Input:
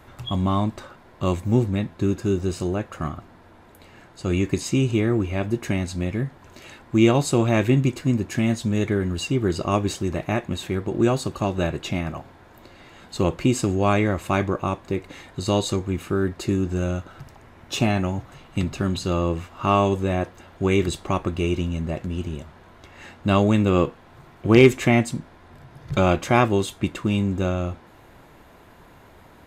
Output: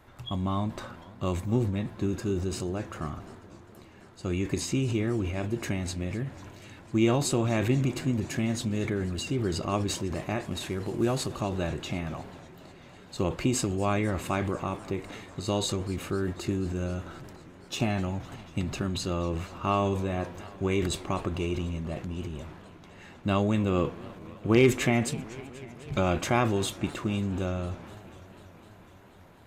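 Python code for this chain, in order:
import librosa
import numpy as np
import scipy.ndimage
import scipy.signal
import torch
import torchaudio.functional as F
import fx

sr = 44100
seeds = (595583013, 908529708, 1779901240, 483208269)

y = fx.cvsd(x, sr, bps=64000, at=(10.42, 11.36))
y = fx.transient(y, sr, attack_db=2, sustain_db=8)
y = fx.echo_warbled(y, sr, ms=248, feedback_pct=79, rate_hz=2.8, cents=213, wet_db=-20)
y = y * librosa.db_to_amplitude(-8.0)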